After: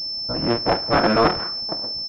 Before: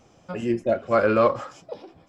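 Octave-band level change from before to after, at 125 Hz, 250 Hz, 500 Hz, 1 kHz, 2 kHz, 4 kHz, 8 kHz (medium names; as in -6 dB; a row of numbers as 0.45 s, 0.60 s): +5.5 dB, +3.5 dB, -0.5 dB, +5.0 dB, +5.0 dB, +24.5 dB, no reading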